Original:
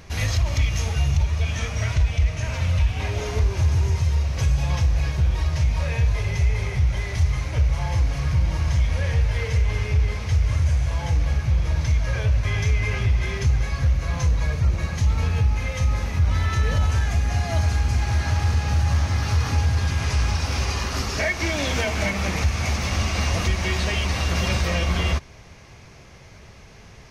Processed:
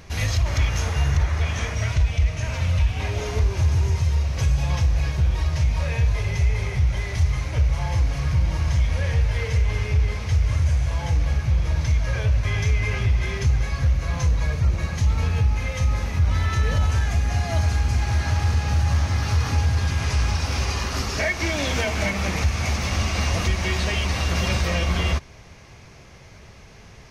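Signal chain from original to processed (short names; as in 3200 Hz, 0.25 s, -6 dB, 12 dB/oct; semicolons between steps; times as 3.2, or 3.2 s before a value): painted sound noise, 0.45–1.75, 270–2200 Hz -37 dBFS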